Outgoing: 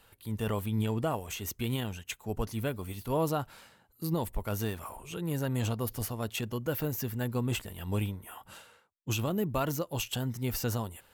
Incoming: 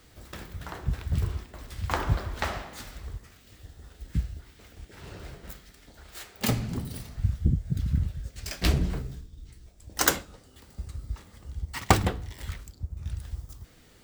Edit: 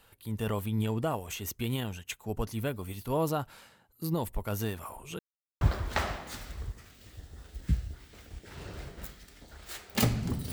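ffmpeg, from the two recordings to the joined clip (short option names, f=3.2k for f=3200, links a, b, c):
-filter_complex "[0:a]apad=whole_dur=10.52,atrim=end=10.52,asplit=2[a][b];[a]atrim=end=5.19,asetpts=PTS-STARTPTS,afade=t=out:st=5.186:d=0.004:c=hsin[c];[b]atrim=start=5.19:end=5.61,asetpts=PTS-STARTPTS,volume=0[d];[1:a]atrim=start=2.07:end=6.98,asetpts=PTS-STARTPTS,afade=t=in:d=0.004:c=hsin[e];[c][d][e]concat=n=3:v=0:a=1"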